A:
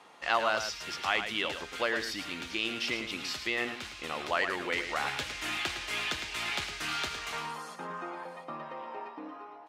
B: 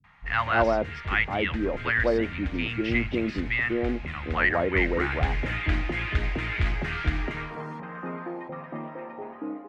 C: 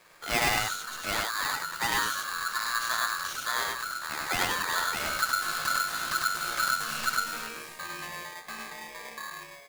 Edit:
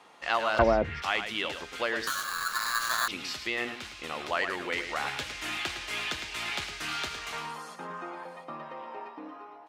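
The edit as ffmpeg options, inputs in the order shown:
ffmpeg -i take0.wav -i take1.wav -i take2.wav -filter_complex "[0:a]asplit=3[link_01][link_02][link_03];[link_01]atrim=end=0.592[link_04];[1:a]atrim=start=0.588:end=1.022[link_05];[link_02]atrim=start=1.018:end=2.072[link_06];[2:a]atrim=start=2.068:end=3.082[link_07];[link_03]atrim=start=3.078[link_08];[link_04][link_05]acrossfade=duration=0.004:curve1=hsin:curve2=hsin[link_09];[link_09][link_06]acrossfade=duration=0.004:curve1=hsin:curve2=hsin[link_10];[link_10][link_07]acrossfade=duration=0.004:curve1=hsin:curve2=hsin[link_11];[link_11][link_08]acrossfade=duration=0.004:curve1=hsin:curve2=hsin" out.wav

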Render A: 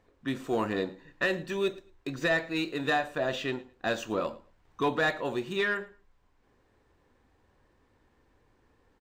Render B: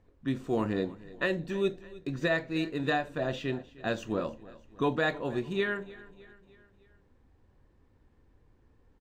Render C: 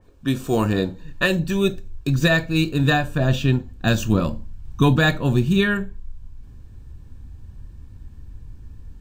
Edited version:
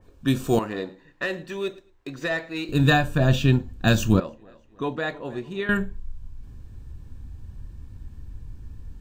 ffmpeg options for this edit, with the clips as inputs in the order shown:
ffmpeg -i take0.wav -i take1.wav -i take2.wav -filter_complex "[2:a]asplit=3[link_01][link_02][link_03];[link_01]atrim=end=0.592[link_04];[0:a]atrim=start=0.588:end=2.692[link_05];[link_02]atrim=start=2.688:end=4.202[link_06];[1:a]atrim=start=4.198:end=5.692[link_07];[link_03]atrim=start=5.688[link_08];[link_04][link_05]acrossfade=duration=0.004:curve1=hsin:curve2=hsin[link_09];[link_09][link_06]acrossfade=duration=0.004:curve1=hsin:curve2=hsin[link_10];[link_10][link_07]acrossfade=duration=0.004:curve1=hsin:curve2=hsin[link_11];[link_11][link_08]acrossfade=duration=0.004:curve1=hsin:curve2=hsin" out.wav

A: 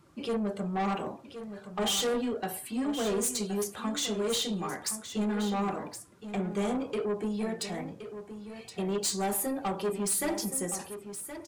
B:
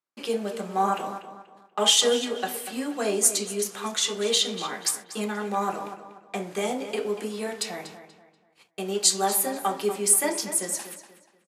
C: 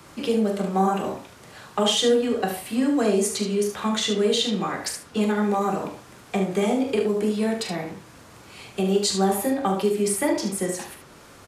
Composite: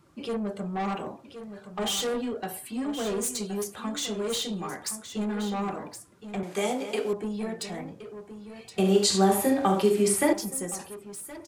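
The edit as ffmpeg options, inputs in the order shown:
ffmpeg -i take0.wav -i take1.wav -i take2.wav -filter_complex "[0:a]asplit=3[link_01][link_02][link_03];[link_01]atrim=end=6.432[link_04];[1:a]atrim=start=6.428:end=7.132[link_05];[link_02]atrim=start=7.128:end=8.782[link_06];[2:a]atrim=start=8.778:end=10.332[link_07];[link_03]atrim=start=10.328[link_08];[link_04][link_05]acrossfade=duration=0.004:curve1=hsin:curve2=hsin[link_09];[link_09][link_06]acrossfade=duration=0.004:curve1=hsin:curve2=hsin[link_10];[link_10][link_07]acrossfade=duration=0.004:curve1=hsin:curve2=hsin[link_11];[link_11][link_08]acrossfade=duration=0.004:curve1=hsin:curve2=hsin" out.wav

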